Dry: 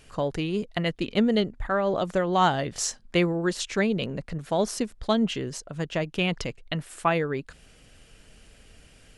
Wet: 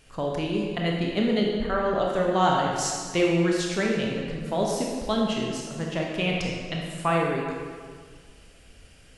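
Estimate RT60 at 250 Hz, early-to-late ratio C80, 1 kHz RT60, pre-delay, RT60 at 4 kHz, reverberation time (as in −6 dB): 1.9 s, 2.5 dB, 1.8 s, 19 ms, 1.4 s, 1.8 s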